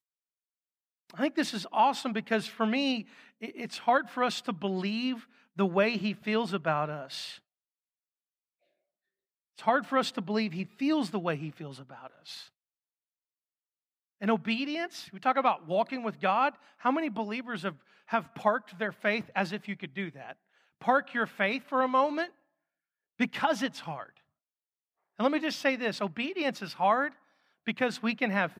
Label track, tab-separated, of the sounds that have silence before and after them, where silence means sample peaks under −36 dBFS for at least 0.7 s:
1.180000	7.320000	sound
9.590000	12.400000	sound
14.220000	22.260000	sound
23.200000	24.040000	sound